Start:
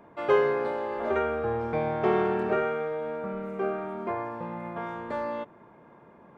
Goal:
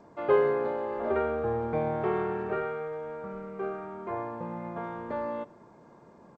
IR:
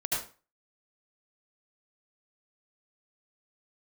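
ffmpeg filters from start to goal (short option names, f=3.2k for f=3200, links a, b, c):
-filter_complex "[0:a]highshelf=f=2.1k:g=-11.5,aresample=11025,aresample=44100,asplit=3[a][b][c];[a]afade=t=out:st=2.02:d=0.02[d];[b]equalizer=f=250:t=o:w=0.67:g=-11,equalizer=f=630:t=o:w=0.67:g=-6,equalizer=f=4k:t=o:w=0.67:g=-4,afade=t=in:st=2.02:d=0.02,afade=t=out:st=4.11:d=0.02[e];[c]afade=t=in:st=4.11:d=0.02[f];[d][e][f]amix=inputs=3:normalize=0,asplit=2[g][h];[h]adelay=100,highpass=300,lowpass=3.4k,asoftclip=type=hard:threshold=-21.5dB,volume=-24dB[i];[g][i]amix=inputs=2:normalize=0" -ar 16000 -c:a g722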